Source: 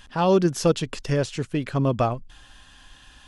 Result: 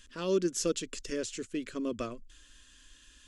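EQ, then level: bell 7200 Hz +9.5 dB 0.56 oct; fixed phaser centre 330 Hz, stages 4; -7.5 dB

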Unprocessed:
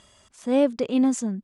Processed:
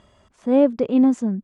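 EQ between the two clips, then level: LPF 1000 Hz 6 dB/oct; +5.0 dB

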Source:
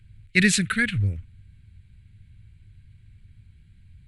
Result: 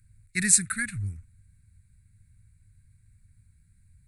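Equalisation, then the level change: high shelf 3400 Hz +12 dB; bell 8800 Hz +9.5 dB 0.5 oct; fixed phaser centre 1300 Hz, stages 4; -8.0 dB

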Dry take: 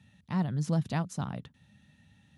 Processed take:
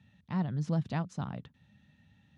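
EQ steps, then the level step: air absorption 100 m; -2.0 dB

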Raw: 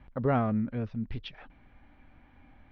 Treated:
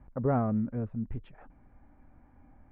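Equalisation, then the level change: LPF 1300 Hz 12 dB/oct; air absorption 270 m; 0.0 dB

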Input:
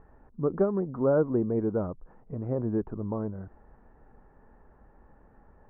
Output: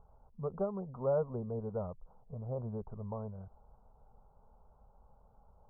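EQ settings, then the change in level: brick-wall FIR low-pass 1600 Hz; fixed phaser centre 750 Hz, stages 4; -4.5 dB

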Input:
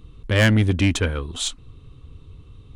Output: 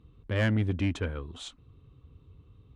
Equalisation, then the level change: HPF 50 Hz; LPF 1900 Hz 6 dB/oct; -9.0 dB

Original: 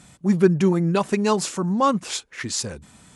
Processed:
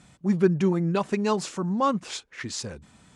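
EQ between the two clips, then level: air absorption 51 m; -4.0 dB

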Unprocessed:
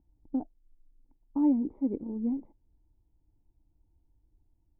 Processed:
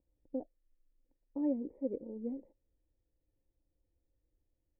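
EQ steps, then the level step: vocal tract filter e; +8.0 dB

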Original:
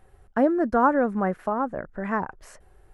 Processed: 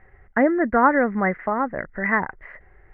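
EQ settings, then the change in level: synth low-pass 2000 Hz, resonance Q 12; air absorption 420 m; +2.5 dB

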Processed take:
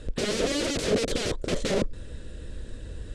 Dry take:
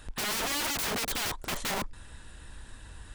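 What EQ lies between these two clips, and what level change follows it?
LPF 8700 Hz 24 dB/oct; resonant low shelf 670 Hz +9 dB, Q 3; bell 3900 Hz +2 dB; 0.0 dB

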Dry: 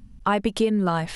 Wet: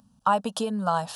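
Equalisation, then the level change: HPF 240 Hz 12 dB/oct; fixed phaser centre 870 Hz, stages 4; +2.5 dB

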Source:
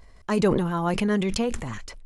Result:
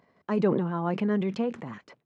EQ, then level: HPF 150 Hz 24 dB/oct; tape spacing loss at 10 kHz 31 dB; -1.5 dB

